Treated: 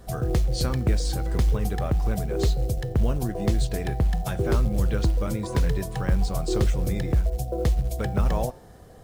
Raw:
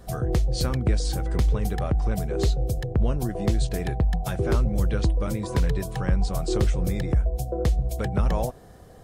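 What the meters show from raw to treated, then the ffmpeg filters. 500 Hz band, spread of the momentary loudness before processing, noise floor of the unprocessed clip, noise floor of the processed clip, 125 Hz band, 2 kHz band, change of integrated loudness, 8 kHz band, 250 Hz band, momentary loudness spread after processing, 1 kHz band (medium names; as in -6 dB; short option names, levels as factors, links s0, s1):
0.0 dB, 3 LU, -47 dBFS, -47 dBFS, 0.0 dB, 0.0 dB, 0.0 dB, +0.5 dB, 0.0 dB, 3 LU, 0.0 dB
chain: -af "bandreject=f=177.7:t=h:w=4,bandreject=f=355.4:t=h:w=4,bandreject=f=533.1:t=h:w=4,bandreject=f=710.8:t=h:w=4,bandreject=f=888.5:t=h:w=4,bandreject=f=1066.2:t=h:w=4,bandreject=f=1243.9:t=h:w=4,bandreject=f=1421.6:t=h:w=4,bandreject=f=1599.3:t=h:w=4,bandreject=f=1777:t=h:w=4,bandreject=f=1954.7:t=h:w=4,bandreject=f=2132.4:t=h:w=4,bandreject=f=2310.1:t=h:w=4,bandreject=f=2487.8:t=h:w=4,bandreject=f=2665.5:t=h:w=4,bandreject=f=2843.2:t=h:w=4,bandreject=f=3020.9:t=h:w=4,bandreject=f=3198.6:t=h:w=4,bandreject=f=3376.3:t=h:w=4,bandreject=f=3554:t=h:w=4,bandreject=f=3731.7:t=h:w=4,bandreject=f=3909.4:t=h:w=4,bandreject=f=4087.1:t=h:w=4,bandreject=f=4264.8:t=h:w=4,bandreject=f=4442.5:t=h:w=4,bandreject=f=4620.2:t=h:w=4,bandreject=f=4797.9:t=h:w=4,bandreject=f=4975.6:t=h:w=4,bandreject=f=5153.3:t=h:w=4,bandreject=f=5331:t=h:w=4,bandreject=f=5508.7:t=h:w=4,bandreject=f=5686.4:t=h:w=4,bandreject=f=5864.1:t=h:w=4,acrusher=bits=8:mode=log:mix=0:aa=0.000001"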